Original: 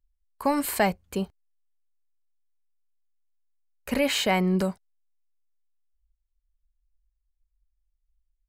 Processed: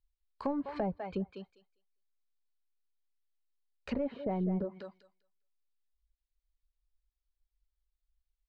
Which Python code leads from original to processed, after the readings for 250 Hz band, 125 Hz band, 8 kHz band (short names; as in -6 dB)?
-8.0 dB, -8.0 dB, under -35 dB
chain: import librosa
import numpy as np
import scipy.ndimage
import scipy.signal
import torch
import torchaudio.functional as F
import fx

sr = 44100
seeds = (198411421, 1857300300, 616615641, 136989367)

p1 = fx.ladder_lowpass(x, sr, hz=5000.0, resonance_pct=45)
p2 = 10.0 ** (-30.5 / 20.0) * (np.abs((p1 / 10.0 ** (-30.5 / 20.0) + 3.0) % 4.0 - 2.0) - 1.0)
p3 = p1 + (p2 * librosa.db_to_amplitude(-7.5))
p4 = fx.echo_thinned(p3, sr, ms=200, feedback_pct=16, hz=200.0, wet_db=-8.0)
p5 = fx.dereverb_blind(p4, sr, rt60_s=0.54)
p6 = fx.env_lowpass_down(p5, sr, base_hz=650.0, full_db=-30.0)
y = fx.dynamic_eq(p6, sr, hz=3300.0, q=0.71, threshold_db=-56.0, ratio=4.0, max_db=-3)